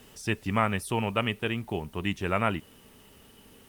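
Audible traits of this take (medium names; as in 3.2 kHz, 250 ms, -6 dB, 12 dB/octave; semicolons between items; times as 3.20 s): a quantiser's noise floor 10-bit, dither triangular; Opus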